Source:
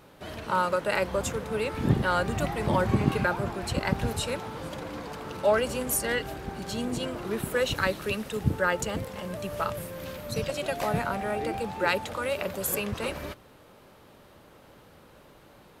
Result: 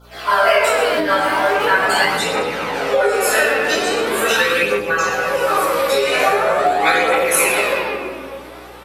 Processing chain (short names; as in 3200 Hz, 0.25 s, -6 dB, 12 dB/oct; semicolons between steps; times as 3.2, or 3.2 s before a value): random spectral dropouts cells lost 32%; Doppler pass-by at 3.67, 30 m/s, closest 18 m; high shelf 4100 Hz -7.5 dB; loudspeakers at several distances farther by 10 m -3 dB, 79 m -10 dB; reverb RT60 3.3 s, pre-delay 4 ms, DRR -18 dB; time stretch by phase-locked vocoder 0.56×; AGC gain up to 15 dB; phaser 0.42 Hz, delay 3.7 ms, feedback 40%; compressor, threshold -17 dBFS, peak gain reduction 12 dB; HPF 390 Hz 12 dB/oct; tilt +2.5 dB/oct; hum 60 Hz, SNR 30 dB; gain +8 dB